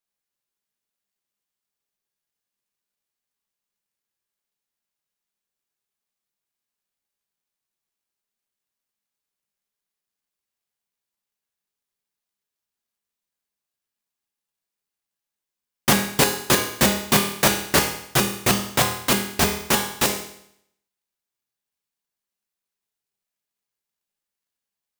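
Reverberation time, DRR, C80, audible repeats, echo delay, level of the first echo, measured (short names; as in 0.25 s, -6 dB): 0.70 s, 1.5 dB, 9.5 dB, none, none, none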